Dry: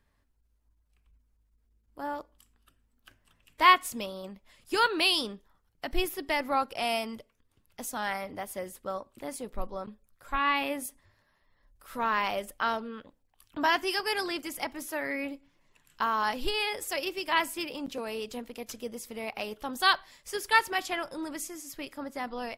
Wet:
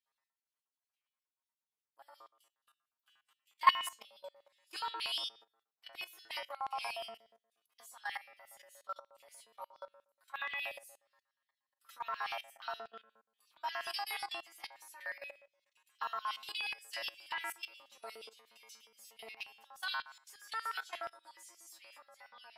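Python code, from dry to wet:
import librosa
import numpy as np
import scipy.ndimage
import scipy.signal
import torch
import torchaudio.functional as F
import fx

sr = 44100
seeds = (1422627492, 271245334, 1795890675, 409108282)

y = fx.stiff_resonator(x, sr, f0_hz=110.0, decay_s=0.73, stiffness=0.002)
y = fx.level_steps(y, sr, step_db=16)
y = fx.filter_lfo_highpass(y, sr, shape='square', hz=8.4, low_hz=930.0, high_hz=3200.0, q=1.8)
y = F.gain(torch.from_numpy(y), 8.5).numpy()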